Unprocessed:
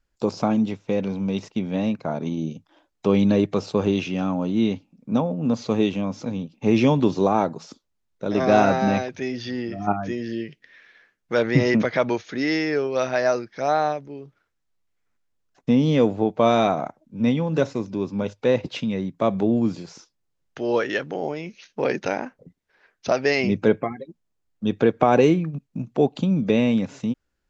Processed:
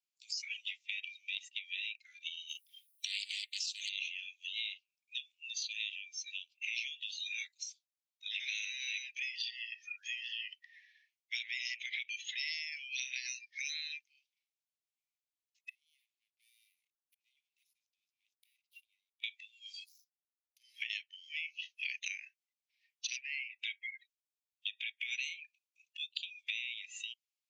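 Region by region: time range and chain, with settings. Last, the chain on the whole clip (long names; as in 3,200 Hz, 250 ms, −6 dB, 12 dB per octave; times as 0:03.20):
0:02.49–0:03.89: spectral tilt +3.5 dB per octave + highs frequency-modulated by the lows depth 0.4 ms
0:15.69–0:19.24: mains-hum notches 50/100/150 Hz + leveller curve on the samples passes 3 + gate with flip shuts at −23 dBFS, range −38 dB
0:19.84–0:20.82: flat-topped bell 1,500 Hz −13 dB 2.5 octaves + power curve on the samples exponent 1.4 + downward compressor 5 to 1, threshold −28 dBFS
0:23.17–0:23.59: low-pass filter 2,500 Hz + downward compressor 5 to 1, threshold −24 dBFS
whole clip: noise reduction from a noise print of the clip's start 20 dB; Butterworth high-pass 2,200 Hz 72 dB per octave; downward compressor 8 to 1, threshold −47 dBFS; level +10.5 dB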